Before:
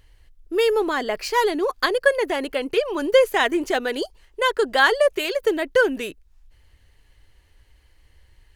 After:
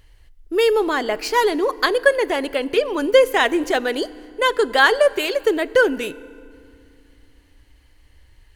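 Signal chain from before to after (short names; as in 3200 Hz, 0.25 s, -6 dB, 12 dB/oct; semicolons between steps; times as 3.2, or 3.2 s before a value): FDN reverb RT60 2.3 s, low-frequency decay 1.55×, high-frequency decay 0.7×, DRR 18 dB; gain +2.5 dB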